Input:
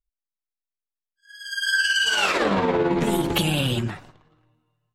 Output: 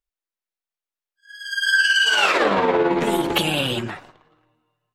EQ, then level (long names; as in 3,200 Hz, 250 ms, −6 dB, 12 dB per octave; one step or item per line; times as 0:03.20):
bass and treble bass −11 dB, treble −5 dB
+4.5 dB